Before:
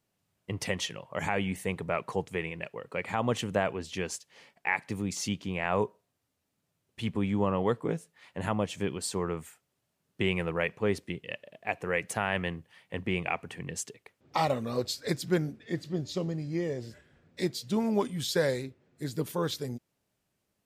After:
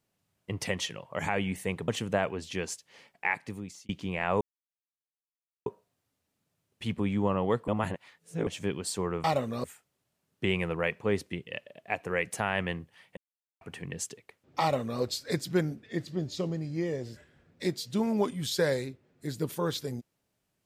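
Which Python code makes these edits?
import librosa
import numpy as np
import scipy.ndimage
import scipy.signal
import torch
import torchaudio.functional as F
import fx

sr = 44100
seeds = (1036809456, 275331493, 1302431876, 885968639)

y = fx.edit(x, sr, fx.cut(start_s=1.88, length_s=1.42),
    fx.fade_out_span(start_s=4.69, length_s=0.62),
    fx.insert_silence(at_s=5.83, length_s=1.25),
    fx.reverse_span(start_s=7.85, length_s=0.79),
    fx.silence(start_s=12.94, length_s=0.44),
    fx.duplicate(start_s=14.38, length_s=0.4, to_s=9.41), tone=tone)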